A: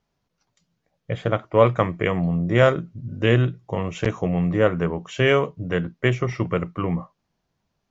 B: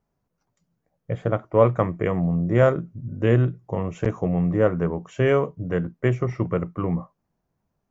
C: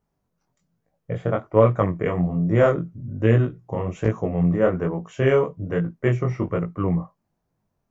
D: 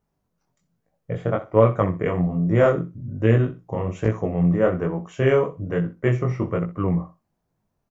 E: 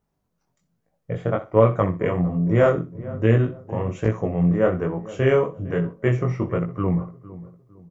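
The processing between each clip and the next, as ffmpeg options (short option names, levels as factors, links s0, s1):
-af "equalizer=f=3700:t=o:w=1.9:g=-13.5"
-af "flanger=delay=18:depth=5.9:speed=1.2,volume=1.5"
-af "aecho=1:1:63|126:0.178|0.0373"
-filter_complex "[0:a]asplit=2[s0][s1];[s1]adelay=456,lowpass=f=1100:p=1,volume=0.141,asplit=2[s2][s3];[s3]adelay=456,lowpass=f=1100:p=1,volume=0.36,asplit=2[s4][s5];[s5]adelay=456,lowpass=f=1100:p=1,volume=0.36[s6];[s0][s2][s4][s6]amix=inputs=4:normalize=0"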